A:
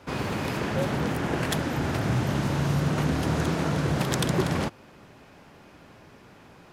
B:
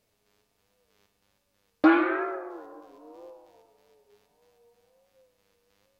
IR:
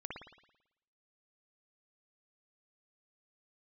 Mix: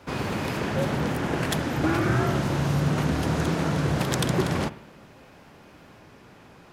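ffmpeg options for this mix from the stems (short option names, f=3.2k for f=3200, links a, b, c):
-filter_complex "[0:a]volume=-0.5dB,asplit=2[a][b];[b]volume=-11.5dB[c];[1:a]alimiter=limit=-18.5dB:level=0:latency=1:release=400,volume=2dB[d];[2:a]atrim=start_sample=2205[e];[c][e]afir=irnorm=-1:irlink=0[f];[a][d][f]amix=inputs=3:normalize=0"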